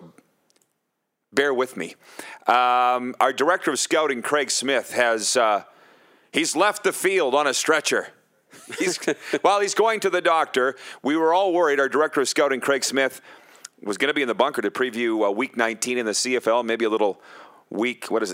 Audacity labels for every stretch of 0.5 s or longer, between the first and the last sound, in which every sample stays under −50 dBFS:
0.720000	1.330000	silence